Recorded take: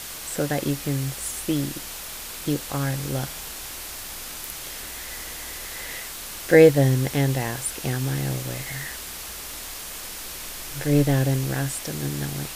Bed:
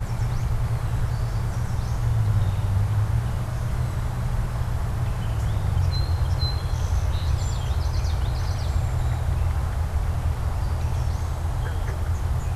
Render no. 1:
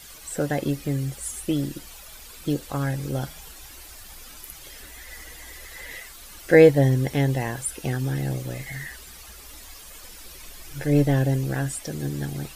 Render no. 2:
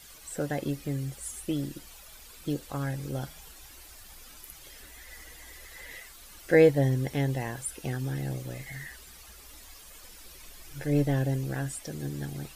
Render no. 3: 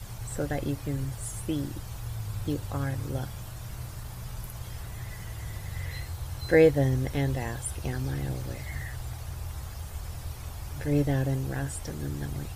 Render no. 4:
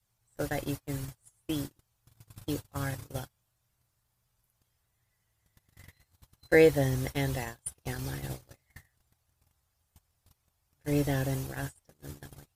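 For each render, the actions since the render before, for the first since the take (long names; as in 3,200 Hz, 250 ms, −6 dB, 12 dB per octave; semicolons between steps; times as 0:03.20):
broadband denoise 12 dB, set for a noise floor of −36 dBFS
level −6 dB
mix in bed −13.5 dB
noise gate −30 dBFS, range −35 dB; spectral tilt +1.5 dB per octave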